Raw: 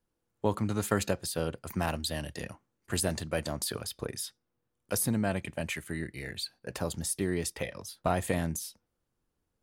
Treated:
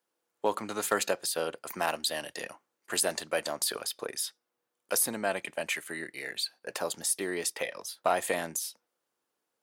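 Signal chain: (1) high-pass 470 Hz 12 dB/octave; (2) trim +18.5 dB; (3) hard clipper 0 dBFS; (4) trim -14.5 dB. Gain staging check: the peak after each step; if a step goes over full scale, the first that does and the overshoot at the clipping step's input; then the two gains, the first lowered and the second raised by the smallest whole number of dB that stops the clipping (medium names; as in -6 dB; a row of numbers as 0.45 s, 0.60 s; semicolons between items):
-14.5 dBFS, +4.0 dBFS, 0.0 dBFS, -14.5 dBFS; step 2, 4.0 dB; step 2 +14.5 dB, step 4 -10.5 dB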